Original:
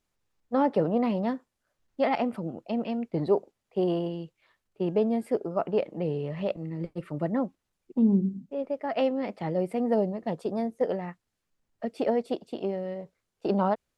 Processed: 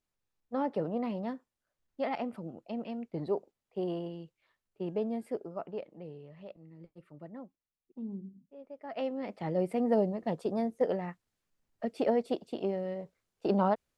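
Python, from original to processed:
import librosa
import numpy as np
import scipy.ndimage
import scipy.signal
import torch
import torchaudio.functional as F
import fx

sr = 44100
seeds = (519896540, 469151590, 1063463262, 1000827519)

y = fx.gain(x, sr, db=fx.line((5.28, -8.0), (6.28, -18.0), (8.65, -18.0), (8.93, -10.0), (9.62, -2.0)))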